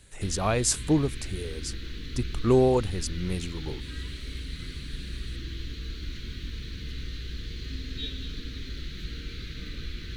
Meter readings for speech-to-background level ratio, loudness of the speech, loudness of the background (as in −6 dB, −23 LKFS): 11.0 dB, −27.0 LKFS, −38.0 LKFS